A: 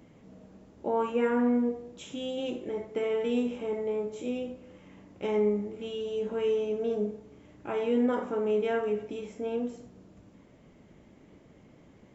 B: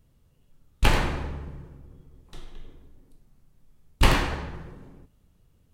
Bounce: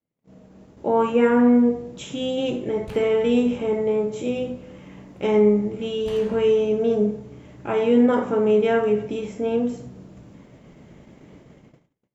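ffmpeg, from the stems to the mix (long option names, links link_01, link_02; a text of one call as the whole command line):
ffmpeg -i stem1.wav -i stem2.wav -filter_complex "[0:a]equalizer=frequency=140:width_type=o:width=0.55:gain=4.5,bandreject=frequency=50:width_type=h:width=6,bandreject=frequency=100:width_type=h:width=6,bandreject=frequency=150:width_type=h:width=6,bandreject=frequency=200:width_type=h:width=6,bandreject=frequency=250:width_type=h:width=6,bandreject=frequency=300:width_type=h:width=6,bandreject=frequency=350:width_type=h:width=6,volume=2.5dB,asplit=2[link_01][link_02];[1:a]highpass=58,alimiter=limit=-14.5dB:level=0:latency=1:release=324,adelay=2050,volume=-10dB[link_03];[link_02]apad=whole_len=343399[link_04];[link_03][link_04]sidechaincompress=threshold=-37dB:ratio=8:attack=9.3:release=1200[link_05];[link_01][link_05]amix=inputs=2:normalize=0,adynamicequalizer=threshold=0.00562:dfrequency=120:dqfactor=1.1:tfrequency=120:tqfactor=1.1:attack=5:release=100:ratio=0.375:range=3.5:mode=boostabove:tftype=bell,dynaudnorm=framelen=120:gausssize=11:maxgain=6dB,agate=range=-34dB:threshold=-48dB:ratio=16:detection=peak" out.wav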